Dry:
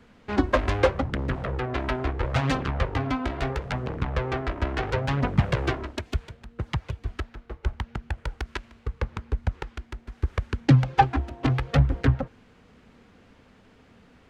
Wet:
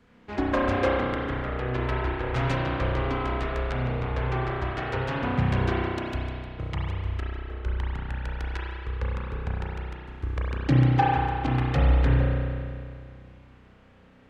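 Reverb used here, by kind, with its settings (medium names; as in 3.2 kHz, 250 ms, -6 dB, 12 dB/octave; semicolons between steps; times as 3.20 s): spring tank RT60 2.3 s, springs 32 ms, chirp 65 ms, DRR -5.5 dB; trim -6.5 dB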